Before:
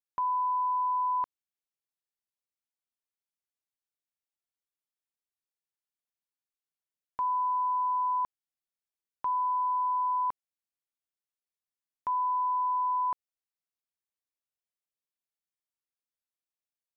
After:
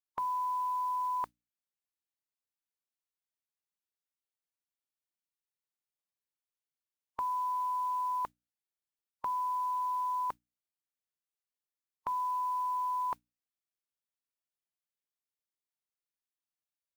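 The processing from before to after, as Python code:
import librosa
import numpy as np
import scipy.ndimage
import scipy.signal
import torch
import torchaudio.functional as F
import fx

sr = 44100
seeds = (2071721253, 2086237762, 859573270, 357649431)

y = fx.hum_notches(x, sr, base_hz=60, count=5)
y = fx.noise_reduce_blind(y, sr, reduce_db=8)
y = fx.mod_noise(y, sr, seeds[0], snr_db=28)
y = y * librosa.db_to_amplitude(3.5)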